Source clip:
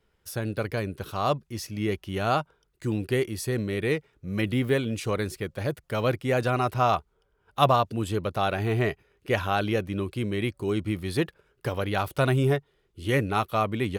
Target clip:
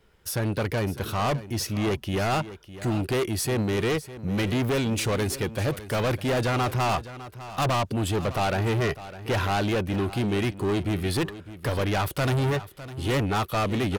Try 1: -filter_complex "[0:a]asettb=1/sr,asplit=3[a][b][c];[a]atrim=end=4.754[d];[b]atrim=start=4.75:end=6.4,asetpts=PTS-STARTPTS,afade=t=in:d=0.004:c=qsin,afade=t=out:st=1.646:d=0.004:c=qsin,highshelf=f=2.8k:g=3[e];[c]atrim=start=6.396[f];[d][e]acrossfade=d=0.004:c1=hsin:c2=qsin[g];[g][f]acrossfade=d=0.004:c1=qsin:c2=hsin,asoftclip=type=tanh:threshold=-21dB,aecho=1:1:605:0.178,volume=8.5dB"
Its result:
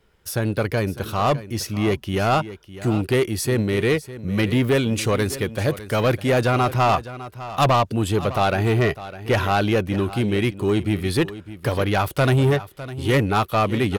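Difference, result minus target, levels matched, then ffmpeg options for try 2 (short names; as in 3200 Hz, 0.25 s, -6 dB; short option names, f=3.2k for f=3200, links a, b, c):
soft clip: distortion -7 dB
-filter_complex "[0:a]asettb=1/sr,asplit=3[a][b][c];[a]atrim=end=4.754[d];[b]atrim=start=4.75:end=6.4,asetpts=PTS-STARTPTS,afade=t=in:d=0.004:c=qsin,afade=t=out:st=1.646:d=0.004:c=qsin,highshelf=f=2.8k:g=3[e];[c]atrim=start=6.396[f];[d][e]acrossfade=d=0.004:c1=hsin:c2=qsin[g];[g][f]acrossfade=d=0.004:c1=qsin:c2=hsin,asoftclip=type=tanh:threshold=-30.5dB,aecho=1:1:605:0.178,volume=8.5dB"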